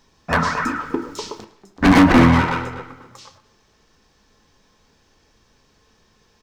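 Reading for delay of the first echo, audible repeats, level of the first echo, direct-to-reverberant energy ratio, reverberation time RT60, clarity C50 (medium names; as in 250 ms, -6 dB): 108 ms, 3, -20.5 dB, 6.0 dB, 0.95 s, 12.5 dB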